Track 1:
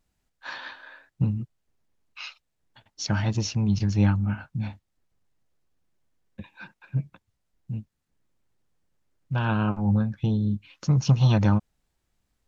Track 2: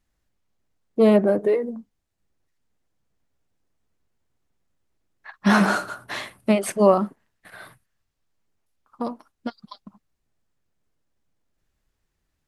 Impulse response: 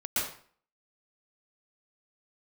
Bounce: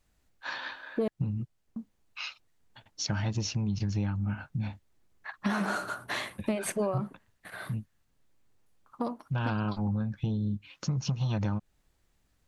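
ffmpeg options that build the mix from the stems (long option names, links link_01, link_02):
-filter_complex "[0:a]acompressor=threshold=-23dB:ratio=6,volume=1dB[link_01];[1:a]bandreject=frequency=5200:width=13,acompressor=threshold=-23dB:ratio=5,volume=0.5dB,asplit=3[link_02][link_03][link_04];[link_02]atrim=end=1.08,asetpts=PTS-STARTPTS,afade=type=out:start_time=1.076:duration=0.004:curve=hsin[link_05];[link_03]atrim=start=1.08:end=1.76,asetpts=PTS-STARTPTS,volume=0[link_06];[link_04]atrim=start=1.76,asetpts=PTS-STARTPTS,afade=type=in:duration=0.004:curve=hsin[link_07];[link_05][link_06][link_07]concat=n=3:v=0:a=1[link_08];[link_01][link_08]amix=inputs=2:normalize=0,acompressor=threshold=-34dB:ratio=1.5"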